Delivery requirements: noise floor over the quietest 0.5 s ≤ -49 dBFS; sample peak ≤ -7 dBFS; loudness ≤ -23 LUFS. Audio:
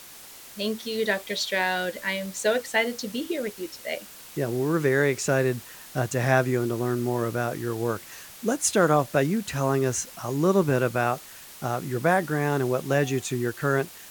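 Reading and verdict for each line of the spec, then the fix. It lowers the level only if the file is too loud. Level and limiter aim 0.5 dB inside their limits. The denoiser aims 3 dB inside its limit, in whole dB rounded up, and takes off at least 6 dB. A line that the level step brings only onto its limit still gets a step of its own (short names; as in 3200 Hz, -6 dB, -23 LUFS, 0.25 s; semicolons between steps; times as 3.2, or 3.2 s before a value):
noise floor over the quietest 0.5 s -45 dBFS: fail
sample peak -9.0 dBFS: OK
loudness -26.0 LUFS: OK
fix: denoiser 7 dB, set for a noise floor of -45 dBFS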